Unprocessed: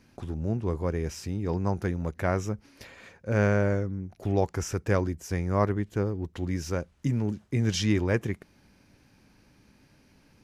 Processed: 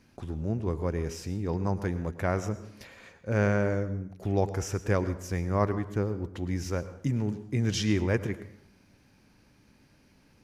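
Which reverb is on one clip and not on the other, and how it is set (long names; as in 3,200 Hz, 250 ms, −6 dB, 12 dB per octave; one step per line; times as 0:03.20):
dense smooth reverb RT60 0.69 s, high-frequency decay 0.7×, pre-delay 90 ms, DRR 13 dB
level −1.5 dB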